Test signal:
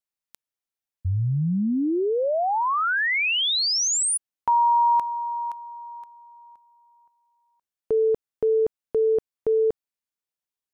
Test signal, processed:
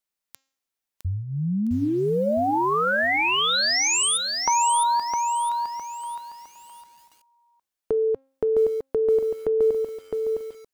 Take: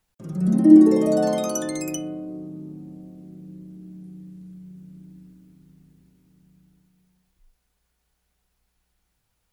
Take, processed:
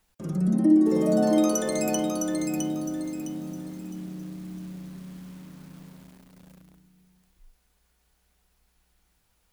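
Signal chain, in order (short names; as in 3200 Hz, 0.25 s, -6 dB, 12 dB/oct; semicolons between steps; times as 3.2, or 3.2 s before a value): compressor 2:1, threshold -30 dBFS; bell 120 Hz -11 dB 0.33 oct; de-hum 268 Hz, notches 28; lo-fi delay 0.66 s, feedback 35%, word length 9-bit, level -4 dB; gain +4.5 dB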